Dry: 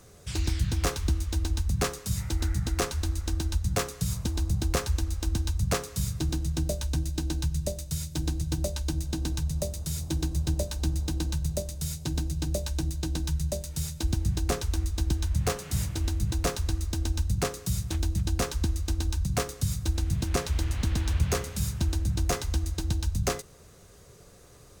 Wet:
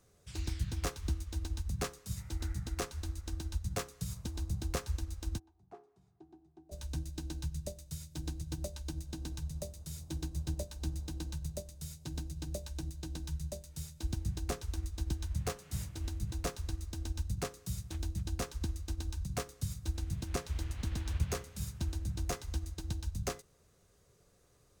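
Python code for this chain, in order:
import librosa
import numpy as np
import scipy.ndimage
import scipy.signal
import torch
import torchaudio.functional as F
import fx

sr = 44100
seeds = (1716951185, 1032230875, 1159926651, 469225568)

y = fx.double_bandpass(x, sr, hz=530.0, octaves=0.96, at=(5.38, 6.71), fade=0.02)
y = fx.upward_expand(y, sr, threshold_db=-36.0, expansion=1.5)
y = y * librosa.db_to_amplitude(-6.5)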